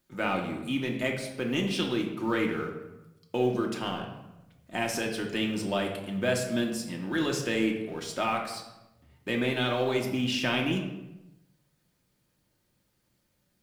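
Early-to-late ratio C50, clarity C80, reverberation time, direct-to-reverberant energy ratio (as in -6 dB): 6.0 dB, 8.5 dB, 1.0 s, 0.0 dB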